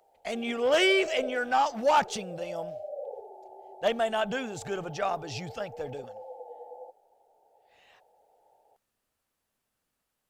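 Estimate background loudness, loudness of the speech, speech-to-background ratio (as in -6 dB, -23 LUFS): -43.0 LUFS, -28.5 LUFS, 14.5 dB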